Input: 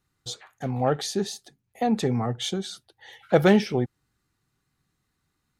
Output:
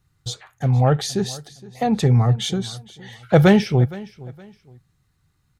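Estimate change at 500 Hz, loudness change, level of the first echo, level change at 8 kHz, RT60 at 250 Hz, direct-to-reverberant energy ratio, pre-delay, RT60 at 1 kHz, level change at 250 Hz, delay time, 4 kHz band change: +3.0 dB, +6.0 dB, −20.0 dB, +4.0 dB, no reverb audible, no reverb audible, no reverb audible, no reverb audible, +5.0 dB, 466 ms, +4.0 dB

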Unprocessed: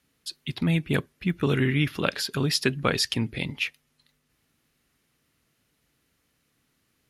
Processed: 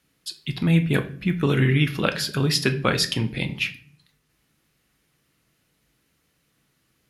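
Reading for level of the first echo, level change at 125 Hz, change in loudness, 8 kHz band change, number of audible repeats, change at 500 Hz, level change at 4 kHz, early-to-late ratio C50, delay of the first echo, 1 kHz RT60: no echo audible, +5.0 dB, +3.5 dB, +2.5 dB, no echo audible, +2.5 dB, +2.5 dB, 14.0 dB, no echo audible, 0.45 s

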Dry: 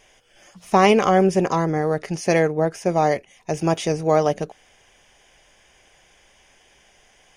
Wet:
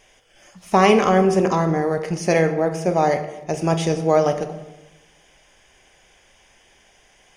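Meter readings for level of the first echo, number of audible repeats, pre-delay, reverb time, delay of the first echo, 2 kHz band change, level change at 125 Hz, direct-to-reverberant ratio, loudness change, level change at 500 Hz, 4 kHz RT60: no echo audible, no echo audible, 16 ms, 1.0 s, no echo audible, +0.5 dB, +1.5 dB, 7.5 dB, +1.0 dB, +1.0 dB, 0.65 s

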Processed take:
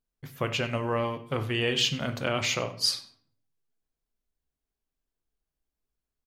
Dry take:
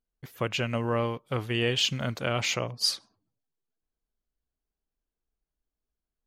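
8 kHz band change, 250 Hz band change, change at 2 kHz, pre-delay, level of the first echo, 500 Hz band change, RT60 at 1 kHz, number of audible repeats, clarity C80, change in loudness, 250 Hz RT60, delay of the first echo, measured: +0.5 dB, −0.5 dB, +0.5 dB, 7 ms, −21.0 dB, 0.0 dB, 0.45 s, 1, 16.0 dB, 0.0 dB, 0.65 s, 95 ms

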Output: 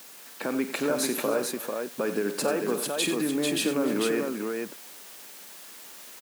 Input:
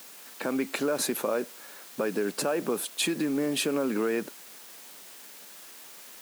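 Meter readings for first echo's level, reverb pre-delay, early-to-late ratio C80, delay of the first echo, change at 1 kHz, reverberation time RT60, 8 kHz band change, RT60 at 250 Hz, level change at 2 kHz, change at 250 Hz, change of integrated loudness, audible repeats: −12.5 dB, no reverb audible, no reverb audible, 49 ms, +2.0 dB, no reverb audible, +2.0 dB, no reverb audible, +2.0 dB, +2.0 dB, +1.0 dB, 4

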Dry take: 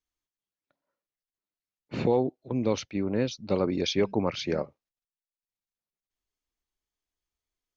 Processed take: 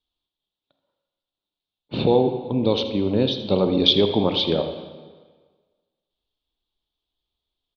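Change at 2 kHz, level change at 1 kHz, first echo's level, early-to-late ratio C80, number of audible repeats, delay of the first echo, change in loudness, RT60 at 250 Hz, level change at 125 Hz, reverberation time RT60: +1.0 dB, +6.5 dB, −14.5 dB, 8.5 dB, 1, 81 ms, +8.0 dB, 1.4 s, +7.0 dB, 1.5 s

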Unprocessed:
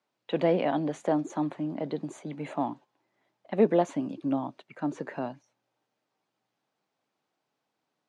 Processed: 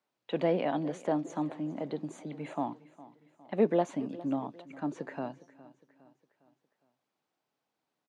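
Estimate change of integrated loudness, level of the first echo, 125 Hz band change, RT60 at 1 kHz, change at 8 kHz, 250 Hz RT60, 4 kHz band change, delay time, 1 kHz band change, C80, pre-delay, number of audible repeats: −3.5 dB, −19.0 dB, −3.5 dB, no reverb audible, can't be measured, no reverb audible, −3.5 dB, 409 ms, −3.5 dB, no reverb audible, no reverb audible, 3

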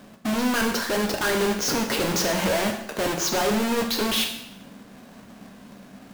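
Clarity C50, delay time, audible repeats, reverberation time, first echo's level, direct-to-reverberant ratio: 7.5 dB, no echo audible, no echo audible, 0.80 s, no echo audible, 2.5 dB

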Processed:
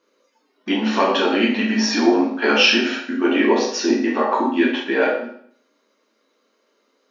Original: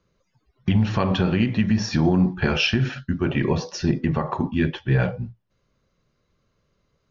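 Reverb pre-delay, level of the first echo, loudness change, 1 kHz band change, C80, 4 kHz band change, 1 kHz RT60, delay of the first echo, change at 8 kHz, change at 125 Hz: 8 ms, no echo audible, +4.0 dB, +9.0 dB, 8.5 dB, +8.5 dB, 0.60 s, no echo audible, can't be measured, below −15 dB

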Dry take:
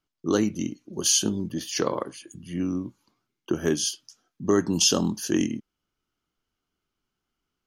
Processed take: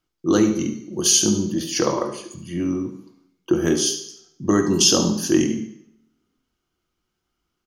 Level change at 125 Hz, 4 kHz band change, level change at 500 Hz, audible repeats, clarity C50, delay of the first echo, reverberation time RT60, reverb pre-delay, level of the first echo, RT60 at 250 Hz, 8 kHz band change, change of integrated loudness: +5.0 dB, +5.0 dB, +5.0 dB, 2, 8.0 dB, 72 ms, 0.70 s, 3 ms, −12.0 dB, 0.65 s, +5.5 dB, +5.5 dB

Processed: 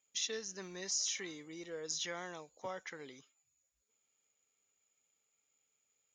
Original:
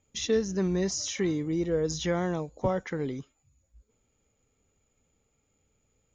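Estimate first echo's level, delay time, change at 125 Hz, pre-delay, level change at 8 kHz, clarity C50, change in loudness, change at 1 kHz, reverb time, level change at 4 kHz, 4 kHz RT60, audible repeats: no echo audible, no echo audible, −25.5 dB, no reverb audible, −2.0 dB, no reverb audible, −10.5 dB, −11.5 dB, no reverb audible, −3.0 dB, no reverb audible, no echo audible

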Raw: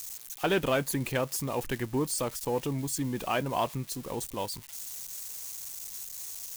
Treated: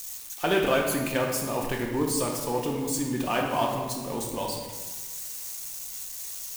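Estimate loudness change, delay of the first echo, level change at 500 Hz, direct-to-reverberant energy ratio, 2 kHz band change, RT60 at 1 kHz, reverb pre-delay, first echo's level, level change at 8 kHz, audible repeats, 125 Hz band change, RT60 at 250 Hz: +3.5 dB, no echo audible, +4.0 dB, −0.5 dB, +4.0 dB, 1.3 s, 3 ms, no echo audible, +3.0 dB, no echo audible, 0.0 dB, 1.4 s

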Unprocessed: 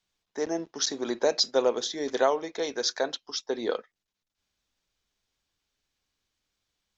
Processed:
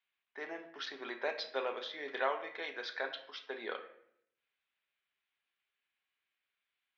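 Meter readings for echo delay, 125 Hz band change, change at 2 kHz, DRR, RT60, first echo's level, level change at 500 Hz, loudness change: no echo audible, can't be measured, −1.5 dB, 5.5 dB, 0.70 s, no echo audible, −13.0 dB, −11.5 dB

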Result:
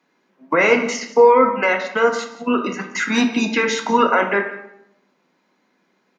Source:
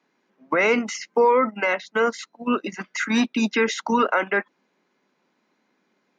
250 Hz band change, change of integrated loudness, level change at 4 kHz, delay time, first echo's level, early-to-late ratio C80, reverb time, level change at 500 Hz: +3.0 dB, +5.0 dB, +4.5 dB, 175 ms, −17.0 dB, 10.0 dB, 0.80 s, +6.0 dB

